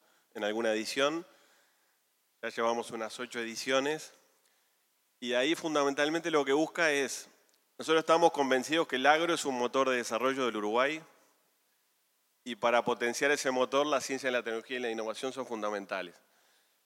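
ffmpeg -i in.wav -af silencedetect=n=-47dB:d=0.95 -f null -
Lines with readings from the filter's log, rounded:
silence_start: 1.24
silence_end: 2.43 | silence_duration: 1.19
silence_start: 4.14
silence_end: 5.22 | silence_duration: 1.08
silence_start: 11.05
silence_end: 12.46 | silence_duration: 1.41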